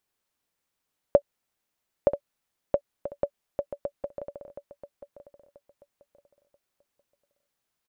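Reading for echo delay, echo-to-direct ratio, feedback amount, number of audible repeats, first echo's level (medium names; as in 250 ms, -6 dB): 984 ms, -12.5 dB, 26%, 2, -13.0 dB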